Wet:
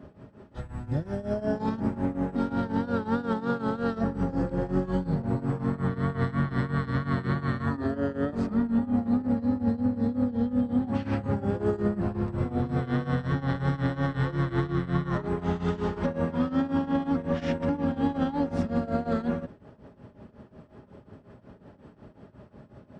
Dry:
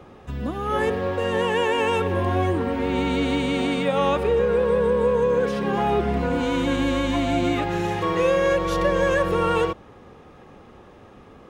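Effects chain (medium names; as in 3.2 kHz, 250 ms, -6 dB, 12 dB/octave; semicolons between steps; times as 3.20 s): high-pass 140 Hz 12 dB/octave; peak limiter -17 dBFS, peak gain reduction 8 dB; tremolo triangle 11 Hz, depth 90%; speed mistake 15 ips tape played at 7.5 ips; trim +2 dB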